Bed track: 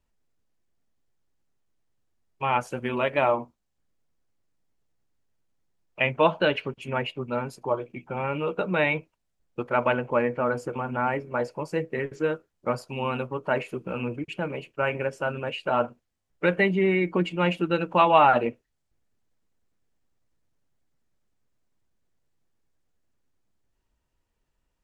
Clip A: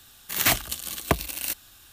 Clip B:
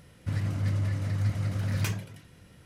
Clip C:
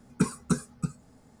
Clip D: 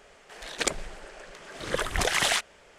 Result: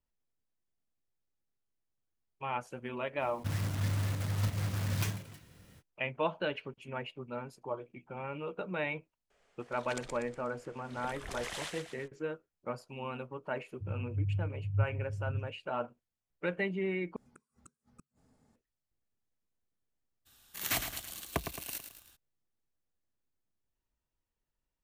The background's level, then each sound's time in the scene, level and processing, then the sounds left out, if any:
bed track -11.5 dB
3.18 add B -4.5 dB, fades 0.05 s + block floating point 3-bit
9.3 add D -17.5 dB + feedback echo 0.121 s, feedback 46%, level -5 dB
13.54 add B -5 dB + spectral expander 2.5:1
17.16 replace with C -12 dB + flipped gate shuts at -29 dBFS, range -39 dB
20.25 add A -11.5 dB, fades 0.02 s + lo-fi delay 0.109 s, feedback 55%, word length 7-bit, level -8 dB

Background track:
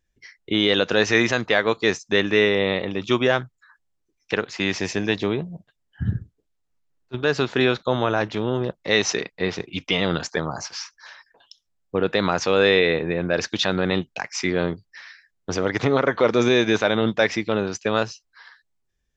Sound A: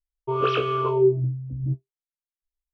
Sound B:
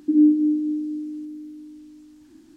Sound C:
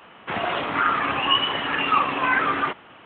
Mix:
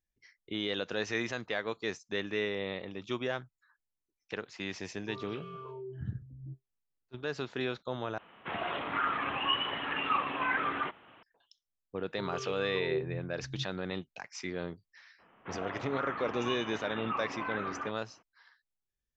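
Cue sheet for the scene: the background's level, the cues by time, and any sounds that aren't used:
background track -15 dB
4.8 add A -17.5 dB + limiter -19.5 dBFS
8.18 replace with C -10 dB
11.9 add A -14.5 dB + bell 1300 Hz -5.5 dB 2 oct
15.18 add C -13 dB, fades 0.02 s + air absorption 490 m
not used: B

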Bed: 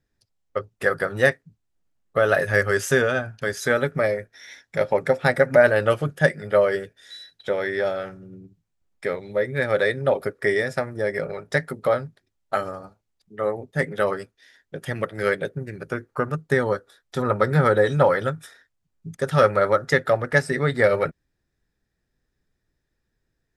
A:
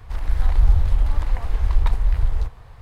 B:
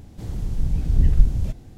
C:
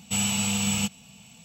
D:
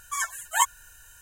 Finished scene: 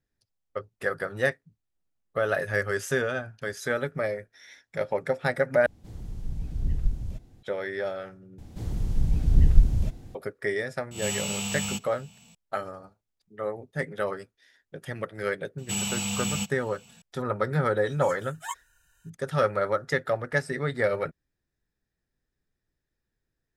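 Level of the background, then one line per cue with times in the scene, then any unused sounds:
bed -7 dB
5.66 replace with B -10.5 dB
8.38 replace with B -1.5 dB
10.91 add C -6 dB + spectral swells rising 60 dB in 0.42 s
15.58 add C -4 dB
17.89 add D -12.5 dB + high shelf 7800 Hz -8.5 dB
not used: A

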